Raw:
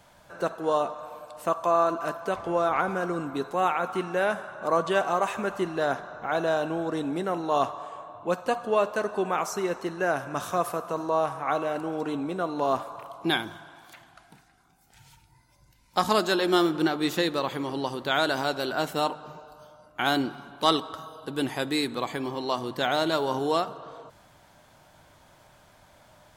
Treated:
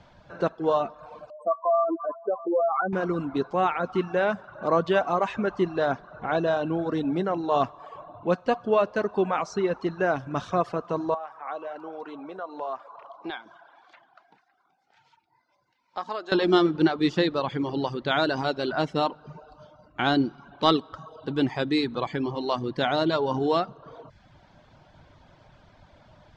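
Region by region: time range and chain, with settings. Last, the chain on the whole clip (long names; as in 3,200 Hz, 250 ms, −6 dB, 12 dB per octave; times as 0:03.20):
0:01.30–0:02.93: expanding power law on the bin magnitudes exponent 3.3 + linear-phase brick-wall high-pass 190 Hz
0:11.14–0:16.32: high-pass filter 940 Hz + downward compressor 1.5 to 1, threshold −41 dBFS + tilt shelving filter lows +9 dB, about 1,200 Hz
whole clip: reverb reduction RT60 0.69 s; low-pass filter 5,200 Hz 24 dB per octave; low-shelf EQ 350 Hz +8.5 dB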